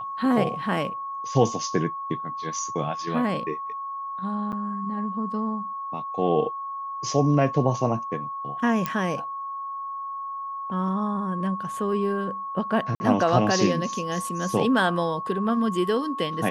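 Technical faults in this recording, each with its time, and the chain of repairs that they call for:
whistle 1,100 Hz −30 dBFS
0:04.52–0:04.53: drop-out 8 ms
0:08.86: click −11 dBFS
0:12.95–0:13.00: drop-out 50 ms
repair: click removal
notch filter 1,100 Hz, Q 30
repair the gap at 0:04.52, 8 ms
repair the gap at 0:12.95, 50 ms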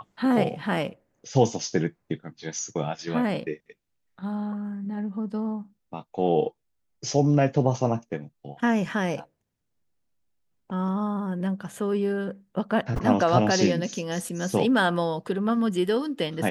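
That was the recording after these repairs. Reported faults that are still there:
none of them is left

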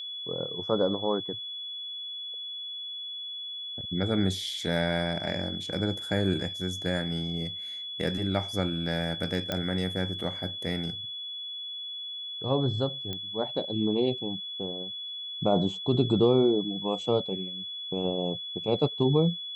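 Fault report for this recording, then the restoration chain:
whistle 3,400 Hz −35 dBFS
0:09.52: click −14 dBFS
0:13.13: click −20 dBFS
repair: click removal
notch filter 3,400 Hz, Q 30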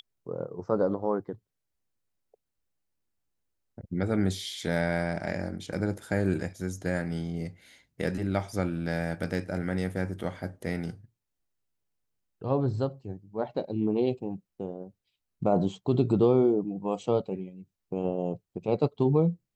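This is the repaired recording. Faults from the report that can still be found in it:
0:09.52: click

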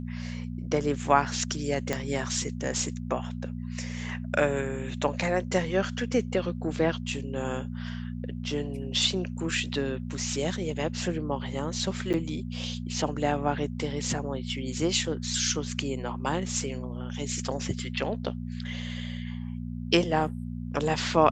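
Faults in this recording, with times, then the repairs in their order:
mains hum 60 Hz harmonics 4 −35 dBFS
0:01.93: click −12 dBFS
0:12.13–0:12.14: drop-out 8.3 ms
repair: click removal
hum removal 60 Hz, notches 4
repair the gap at 0:12.13, 8.3 ms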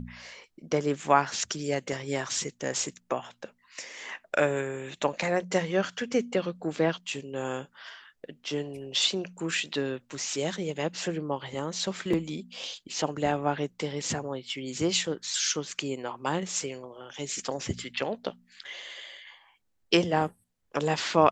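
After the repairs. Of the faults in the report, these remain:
0:01.93: click

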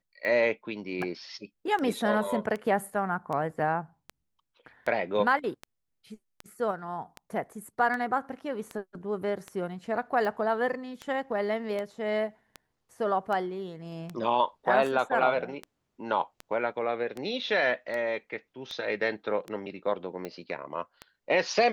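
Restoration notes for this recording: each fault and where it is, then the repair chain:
scratch tick 78 rpm −22 dBFS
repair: click removal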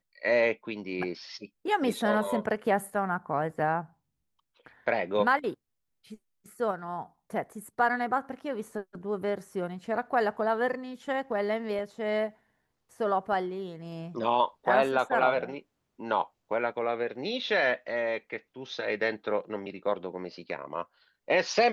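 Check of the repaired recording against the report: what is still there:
none of them is left

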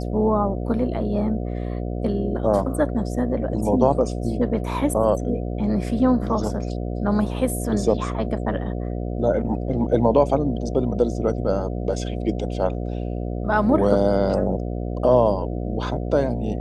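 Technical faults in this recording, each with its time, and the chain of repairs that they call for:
mains buzz 60 Hz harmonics 12 −27 dBFS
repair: hum removal 60 Hz, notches 12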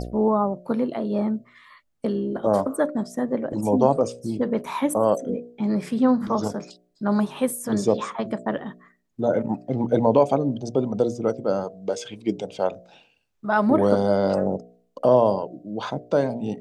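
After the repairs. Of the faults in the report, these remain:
none of them is left

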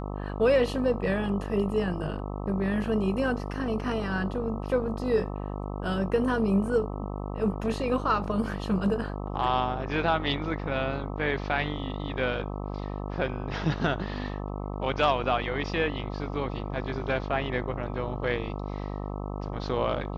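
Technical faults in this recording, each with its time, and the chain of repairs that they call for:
mains buzz 50 Hz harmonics 26 −34 dBFS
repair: hum removal 50 Hz, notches 26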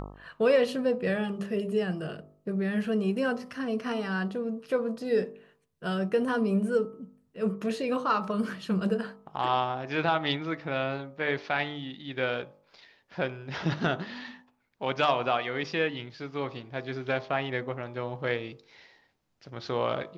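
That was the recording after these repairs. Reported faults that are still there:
none of them is left

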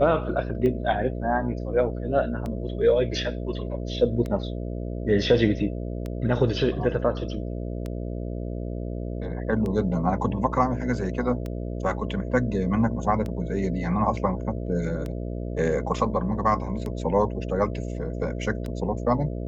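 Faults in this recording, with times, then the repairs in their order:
mains buzz 60 Hz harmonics 11 −31 dBFS
scratch tick 33 1/3 rpm −20 dBFS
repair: click removal
hum removal 60 Hz, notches 11

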